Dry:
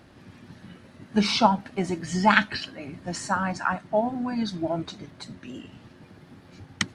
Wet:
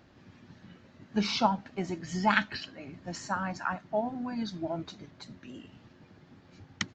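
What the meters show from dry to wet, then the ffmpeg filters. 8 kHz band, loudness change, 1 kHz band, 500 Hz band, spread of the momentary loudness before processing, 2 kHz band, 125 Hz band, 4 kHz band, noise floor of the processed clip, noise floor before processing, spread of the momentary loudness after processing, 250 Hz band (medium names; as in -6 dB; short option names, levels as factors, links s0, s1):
-7.5 dB, -6.5 dB, -6.5 dB, -6.5 dB, 20 LU, -6.5 dB, -6.5 dB, -6.5 dB, -59 dBFS, -52 dBFS, 20 LU, -6.5 dB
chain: -af "aresample=16000,aresample=44100,volume=0.473"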